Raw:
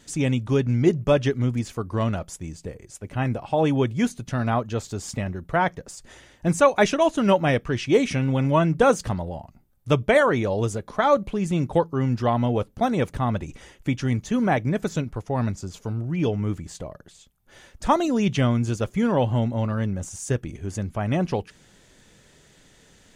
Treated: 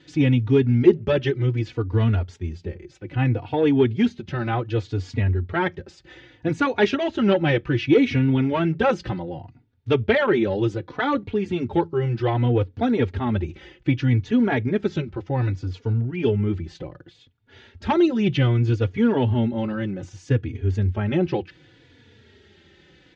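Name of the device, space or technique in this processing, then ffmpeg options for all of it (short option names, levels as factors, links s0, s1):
barber-pole flanger into a guitar amplifier: -filter_complex "[0:a]asplit=2[s0][s1];[s1]adelay=3.5,afreqshift=-0.65[s2];[s0][s2]amix=inputs=2:normalize=1,asoftclip=type=tanh:threshold=0.211,highpass=76,equalizer=f=91:t=q:w=4:g=9,equalizer=f=180:t=q:w=4:g=-6,equalizer=f=350:t=q:w=4:g=6,equalizer=f=640:t=q:w=4:g=-10,equalizer=f=1100:t=q:w=4:g=-9,lowpass=f=4100:w=0.5412,lowpass=f=4100:w=1.3066,volume=2"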